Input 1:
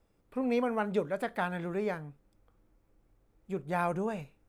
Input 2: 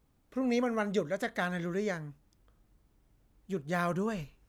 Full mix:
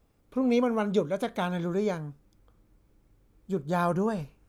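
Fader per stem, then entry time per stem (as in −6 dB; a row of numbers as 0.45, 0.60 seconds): +1.0, −1.0 decibels; 0.00, 0.00 seconds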